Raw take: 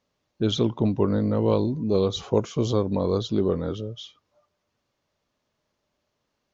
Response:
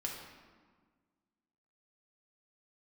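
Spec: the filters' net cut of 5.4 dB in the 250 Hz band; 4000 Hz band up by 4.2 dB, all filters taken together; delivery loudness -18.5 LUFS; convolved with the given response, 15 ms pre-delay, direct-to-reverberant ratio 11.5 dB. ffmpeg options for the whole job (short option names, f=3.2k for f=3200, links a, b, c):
-filter_complex "[0:a]equalizer=f=250:t=o:g=-7.5,equalizer=f=4k:t=o:g=5,asplit=2[a][b];[1:a]atrim=start_sample=2205,adelay=15[c];[b][c]afir=irnorm=-1:irlink=0,volume=-12.5dB[d];[a][d]amix=inputs=2:normalize=0,volume=8.5dB"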